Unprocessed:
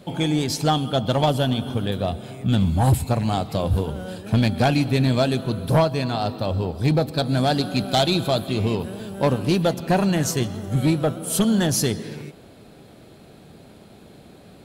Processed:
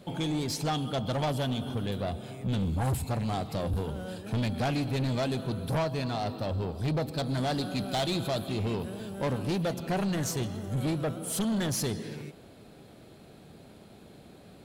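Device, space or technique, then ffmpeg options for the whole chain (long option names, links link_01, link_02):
saturation between pre-emphasis and de-emphasis: -af "highshelf=frequency=11000:gain=8,asoftclip=type=tanh:threshold=-20dB,highshelf=frequency=11000:gain=-8,volume=-5dB"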